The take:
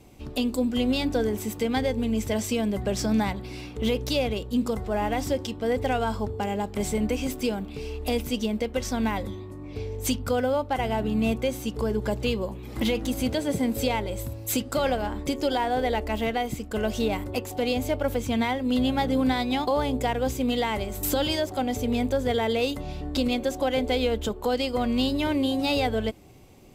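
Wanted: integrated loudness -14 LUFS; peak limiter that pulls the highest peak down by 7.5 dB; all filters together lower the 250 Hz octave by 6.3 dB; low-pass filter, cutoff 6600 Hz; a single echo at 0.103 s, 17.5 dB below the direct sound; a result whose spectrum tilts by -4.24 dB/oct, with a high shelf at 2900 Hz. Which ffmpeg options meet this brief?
-af "lowpass=6.6k,equalizer=f=250:t=o:g=-7,highshelf=f=2.9k:g=5.5,alimiter=limit=-19.5dB:level=0:latency=1,aecho=1:1:103:0.133,volume=16.5dB"

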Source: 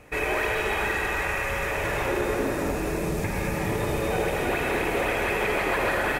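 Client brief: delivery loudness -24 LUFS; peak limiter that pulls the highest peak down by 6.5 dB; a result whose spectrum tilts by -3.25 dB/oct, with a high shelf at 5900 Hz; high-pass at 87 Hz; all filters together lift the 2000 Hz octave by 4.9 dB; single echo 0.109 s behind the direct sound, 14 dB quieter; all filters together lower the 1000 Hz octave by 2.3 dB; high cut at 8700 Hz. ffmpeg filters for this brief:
-af "highpass=87,lowpass=8.7k,equalizer=f=1k:t=o:g=-5,equalizer=f=2k:t=o:g=8,highshelf=f=5.9k:g=-6.5,alimiter=limit=-17dB:level=0:latency=1,aecho=1:1:109:0.2,volume=1.5dB"

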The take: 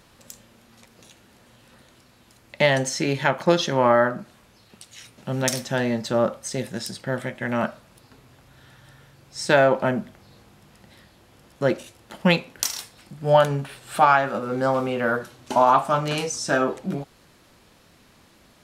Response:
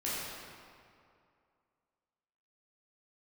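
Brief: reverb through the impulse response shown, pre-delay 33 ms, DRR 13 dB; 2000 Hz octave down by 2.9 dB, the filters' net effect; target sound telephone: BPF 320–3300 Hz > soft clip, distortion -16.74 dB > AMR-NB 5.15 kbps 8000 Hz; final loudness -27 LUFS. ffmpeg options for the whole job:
-filter_complex "[0:a]equalizer=f=2k:t=o:g=-3.5,asplit=2[a][b];[1:a]atrim=start_sample=2205,adelay=33[c];[b][c]afir=irnorm=-1:irlink=0,volume=-19dB[d];[a][d]amix=inputs=2:normalize=0,highpass=320,lowpass=3.3k,asoftclip=threshold=-11dB" -ar 8000 -c:a libopencore_amrnb -b:a 5150

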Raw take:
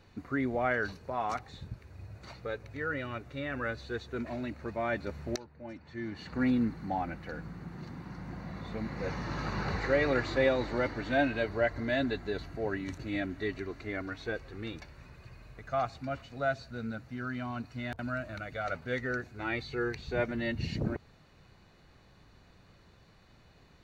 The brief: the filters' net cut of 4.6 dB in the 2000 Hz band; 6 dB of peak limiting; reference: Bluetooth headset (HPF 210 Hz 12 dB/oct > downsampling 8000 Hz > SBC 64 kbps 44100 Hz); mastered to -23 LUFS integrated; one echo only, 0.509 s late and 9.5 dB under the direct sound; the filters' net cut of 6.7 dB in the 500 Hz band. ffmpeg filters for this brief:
-af "equalizer=f=500:t=o:g=-8,equalizer=f=2k:t=o:g=-5.5,alimiter=level_in=1.5dB:limit=-24dB:level=0:latency=1,volume=-1.5dB,highpass=210,aecho=1:1:509:0.335,aresample=8000,aresample=44100,volume=17dB" -ar 44100 -c:a sbc -b:a 64k

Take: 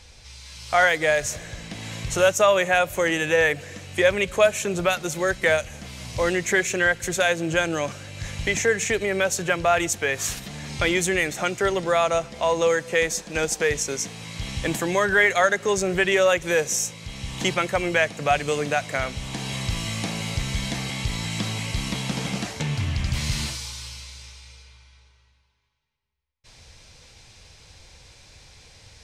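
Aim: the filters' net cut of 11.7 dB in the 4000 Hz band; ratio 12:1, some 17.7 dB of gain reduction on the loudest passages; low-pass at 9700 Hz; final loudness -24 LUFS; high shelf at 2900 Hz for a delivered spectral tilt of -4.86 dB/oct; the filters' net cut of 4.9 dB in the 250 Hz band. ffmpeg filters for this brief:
-af "lowpass=9.7k,equalizer=f=250:t=o:g=-8.5,highshelf=f=2.9k:g=-9,equalizer=f=4k:t=o:g=-9,acompressor=threshold=-33dB:ratio=12,volume=14dB"

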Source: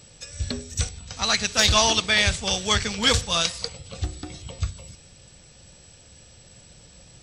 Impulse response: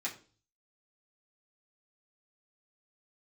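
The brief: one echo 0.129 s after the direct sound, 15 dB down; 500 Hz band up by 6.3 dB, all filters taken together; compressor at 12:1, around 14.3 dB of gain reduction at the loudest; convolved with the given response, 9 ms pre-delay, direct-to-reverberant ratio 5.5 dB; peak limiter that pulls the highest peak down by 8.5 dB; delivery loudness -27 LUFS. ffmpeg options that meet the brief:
-filter_complex "[0:a]equalizer=f=500:t=o:g=8,acompressor=threshold=-27dB:ratio=12,alimiter=limit=-22dB:level=0:latency=1,aecho=1:1:129:0.178,asplit=2[a][b];[1:a]atrim=start_sample=2205,adelay=9[c];[b][c]afir=irnorm=-1:irlink=0,volume=-8dB[d];[a][d]amix=inputs=2:normalize=0,volume=6.5dB"

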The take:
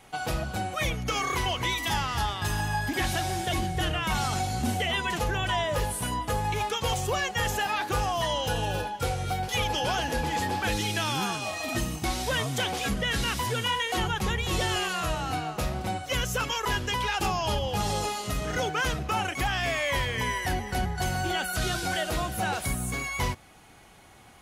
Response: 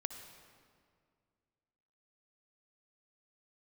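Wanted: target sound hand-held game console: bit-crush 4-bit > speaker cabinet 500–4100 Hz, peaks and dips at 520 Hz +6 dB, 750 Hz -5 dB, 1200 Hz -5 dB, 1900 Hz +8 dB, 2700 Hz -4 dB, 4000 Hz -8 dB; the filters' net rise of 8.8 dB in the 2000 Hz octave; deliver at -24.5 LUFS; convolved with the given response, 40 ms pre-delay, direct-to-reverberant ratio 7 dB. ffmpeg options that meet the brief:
-filter_complex "[0:a]equalizer=f=2k:t=o:g=6.5,asplit=2[a][b];[1:a]atrim=start_sample=2205,adelay=40[c];[b][c]afir=irnorm=-1:irlink=0,volume=-6dB[d];[a][d]amix=inputs=2:normalize=0,acrusher=bits=3:mix=0:aa=0.000001,highpass=500,equalizer=f=520:t=q:w=4:g=6,equalizer=f=750:t=q:w=4:g=-5,equalizer=f=1.2k:t=q:w=4:g=-5,equalizer=f=1.9k:t=q:w=4:g=8,equalizer=f=2.7k:t=q:w=4:g=-4,equalizer=f=4k:t=q:w=4:g=-8,lowpass=f=4.1k:w=0.5412,lowpass=f=4.1k:w=1.3066"

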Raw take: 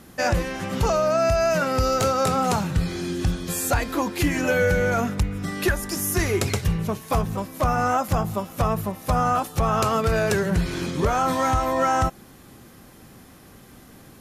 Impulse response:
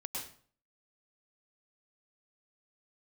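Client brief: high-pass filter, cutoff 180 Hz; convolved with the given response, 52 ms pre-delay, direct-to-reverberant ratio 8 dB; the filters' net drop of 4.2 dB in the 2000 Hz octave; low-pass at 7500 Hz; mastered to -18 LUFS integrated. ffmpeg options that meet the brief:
-filter_complex "[0:a]highpass=180,lowpass=7.5k,equalizer=f=2k:t=o:g=-6,asplit=2[a][b];[1:a]atrim=start_sample=2205,adelay=52[c];[b][c]afir=irnorm=-1:irlink=0,volume=-8.5dB[d];[a][d]amix=inputs=2:normalize=0,volume=6.5dB"

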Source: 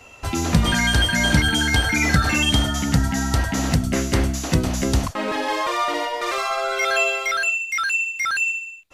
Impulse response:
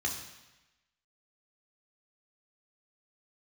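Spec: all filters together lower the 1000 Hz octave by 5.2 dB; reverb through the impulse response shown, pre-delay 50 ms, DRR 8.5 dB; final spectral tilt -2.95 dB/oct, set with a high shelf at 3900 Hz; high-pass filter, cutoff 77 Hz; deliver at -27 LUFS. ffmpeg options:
-filter_complex "[0:a]highpass=77,equalizer=f=1k:t=o:g=-8,highshelf=f=3.9k:g=7,asplit=2[a][b];[1:a]atrim=start_sample=2205,adelay=50[c];[b][c]afir=irnorm=-1:irlink=0,volume=-13dB[d];[a][d]amix=inputs=2:normalize=0,volume=-7.5dB"

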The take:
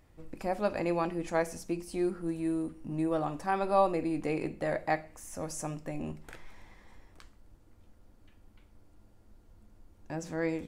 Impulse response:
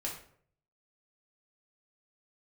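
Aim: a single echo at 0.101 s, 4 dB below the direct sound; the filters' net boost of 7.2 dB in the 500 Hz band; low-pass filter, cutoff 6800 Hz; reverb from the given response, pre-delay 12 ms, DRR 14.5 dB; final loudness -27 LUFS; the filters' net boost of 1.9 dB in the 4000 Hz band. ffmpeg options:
-filter_complex "[0:a]lowpass=6.8k,equalizer=f=500:t=o:g=9,equalizer=f=4k:t=o:g=3,aecho=1:1:101:0.631,asplit=2[a][b];[1:a]atrim=start_sample=2205,adelay=12[c];[b][c]afir=irnorm=-1:irlink=0,volume=-16dB[d];[a][d]amix=inputs=2:normalize=0,volume=-1dB"

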